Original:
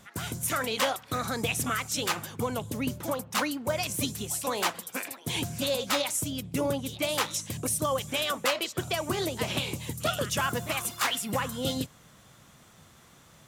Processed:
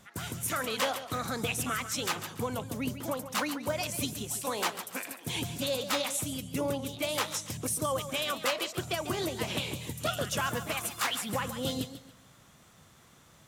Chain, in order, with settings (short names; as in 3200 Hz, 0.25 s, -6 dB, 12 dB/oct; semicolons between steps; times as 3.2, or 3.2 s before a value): warbling echo 0.141 s, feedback 31%, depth 98 cents, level -11.5 dB; gain -3 dB